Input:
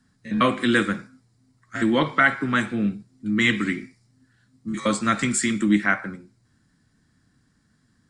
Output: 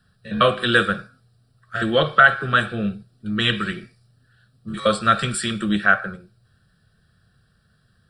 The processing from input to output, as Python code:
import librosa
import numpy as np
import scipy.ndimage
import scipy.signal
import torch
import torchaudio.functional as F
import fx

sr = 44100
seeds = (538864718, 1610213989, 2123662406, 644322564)

y = fx.fixed_phaser(x, sr, hz=1400.0, stages=8)
y = y * librosa.db_to_amplitude(7.0)